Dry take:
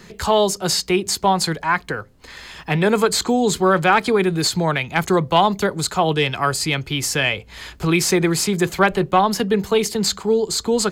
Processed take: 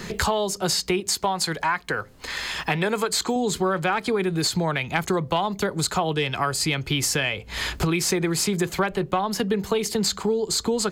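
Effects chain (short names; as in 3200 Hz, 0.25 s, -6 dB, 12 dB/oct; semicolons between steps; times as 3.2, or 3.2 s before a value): 1–3.36 low shelf 460 Hz -6.5 dB; compressor 6:1, threshold -30 dBFS, peak gain reduction 18.5 dB; gain +8.5 dB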